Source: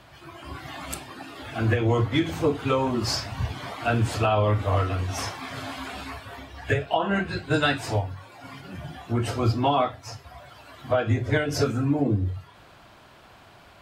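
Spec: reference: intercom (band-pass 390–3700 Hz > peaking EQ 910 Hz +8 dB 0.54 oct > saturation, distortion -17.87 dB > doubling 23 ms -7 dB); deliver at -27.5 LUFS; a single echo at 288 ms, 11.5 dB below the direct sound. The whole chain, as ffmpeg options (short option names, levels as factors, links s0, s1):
-filter_complex "[0:a]highpass=390,lowpass=3700,equalizer=f=910:t=o:w=0.54:g=8,aecho=1:1:288:0.266,asoftclip=threshold=0.211,asplit=2[s0][s1];[s1]adelay=23,volume=0.447[s2];[s0][s2]amix=inputs=2:normalize=0"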